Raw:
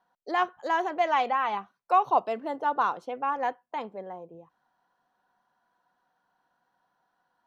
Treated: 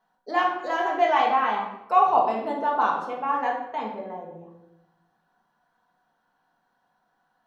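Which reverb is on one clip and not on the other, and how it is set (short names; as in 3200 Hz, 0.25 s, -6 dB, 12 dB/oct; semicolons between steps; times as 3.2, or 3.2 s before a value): shoebox room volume 290 m³, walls mixed, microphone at 1.5 m; gain -1 dB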